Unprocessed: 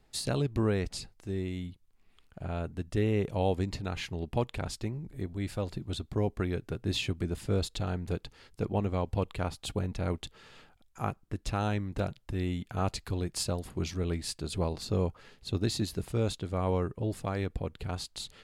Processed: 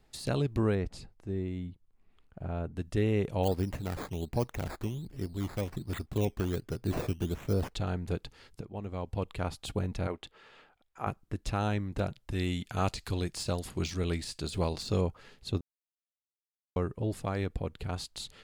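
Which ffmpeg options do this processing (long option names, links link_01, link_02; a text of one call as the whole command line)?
ffmpeg -i in.wav -filter_complex "[0:a]asettb=1/sr,asplit=3[link_01][link_02][link_03];[link_01]atrim=end=0.754[link_04];[link_02]atrim=start=0.75:end=2.76,asetpts=PTS-STARTPTS,afade=type=in:duration=0.004:curve=qsin,afade=type=out:start_time=2.006:duration=0.004:curve=qsin,highshelf=frequency=2100:gain=-12[link_05];[link_03]atrim=start=2.756[link_06];[link_04][link_05]acrossfade=duration=0.004:curve1=hsin:curve2=qsin[link_07];[link_07][link_06]acrossfade=duration=0.004:curve1=qsin:curve2=hsin,asplit=3[link_08][link_09][link_10];[link_08]afade=type=out:start_time=3.43:duration=0.02[link_11];[link_09]acrusher=samples=12:mix=1:aa=0.000001:lfo=1:lforange=7.2:lforate=1.3,afade=type=in:start_time=3.43:duration=0.02,afade=type=out:start_time=7.74:duration=0.02[link_12];[link_10]afade=type=in:start_time=7.74:duration=0.02[link_13];[link_11][link_12][link_13]amix=inputs=3:normalize=0,asettb=1/sr,asplit=3[link_14][link_15][link_16];[link_14]atrim=end=10.074[link_17];[link_15]atrim=start=10.07:end=11.07,asetpts=PTS-STARTPTS,afade=type=in:duration=0.004:curve=qsin,afade=type=out:start_time=0.996:duration=0.004:curve=qsin,bass=frequency=250:gain=-12,treble=frequency=4000:gain=-11[link_18];[link_16]atrim=start=11.066[link_19];[link_17][link_18]acrossfade=duration=0.004:curve1=hsin:curve2=qsin[link_20];[link_20][link_19]acrossfade=duration=0.004:curve1=qsin:curve2=hsin,asettb=1/sr,asplit=3[link_21][link_22][link_23];[link_21]atrim=end=12.314[link_24];[link_22]atrim=start=12.31:end=15.01,asetpts=PTS-STARTPTS,afade=type=in:duration=0.004:curve=qsin,afade=type=out:start_time=2.696:duration=0.004:curve=qsin,equalizer=frequency=6300:width=0.33:gain=9[link_25];[link_23]atrim=start=15.006[link_26];[link_24][link_25]acrossfade=duration=0.004:curve1=hsin:curve2=qsin[link_27];[link_27][link_26]acrossfade=duration=0.004:curve1=qsin:curve2=hsin,asplit=4[link_28][link_29][link_30][link_31];[link_28]atrim=end=8.61,asetpts=PTS-STARTPTS,afade=type=out:start_time=8.606:duration=0.004:curve=hsin:silence=0.177828[link_32];[link_29]atrim=start=8.61:end=15.61,asetpts=PTS-STARTPTS,afade=type=in:duration=0.94:silence=0.177828,afade=type=out:start_time=6.996:duration=0.004:curve=hsin[link_33];[link_30]atrim=start=15.61:end=16.76,asetpts=PTS-STARTPTS,volume=0[link_34];[link_31]atrim=start=16.76,asetpts=PTS-STARTPTS,afade=type=in:duration=0.004:curve=hsin[link_35];[link_32][link_33][link_34][link_35]concat=n=4:v=0:a=1,deesser=0.85" out.wav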